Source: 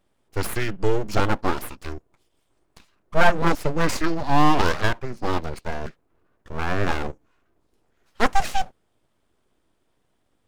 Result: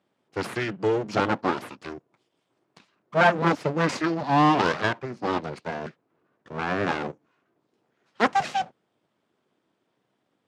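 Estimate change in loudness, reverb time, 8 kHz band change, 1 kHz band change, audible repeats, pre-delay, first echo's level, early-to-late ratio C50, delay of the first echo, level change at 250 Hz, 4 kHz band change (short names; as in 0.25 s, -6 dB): -0.5 dB, none, -7.5 dB, -0.5 dB, none, none, none, none, none, 0.0 dB, -2.0 dB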